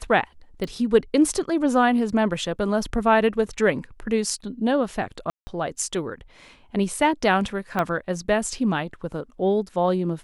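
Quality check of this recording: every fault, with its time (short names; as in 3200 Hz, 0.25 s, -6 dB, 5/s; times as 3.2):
0.64 pop
5.3–5.47 gap 0.17 s
7.79 pop -11 dBFS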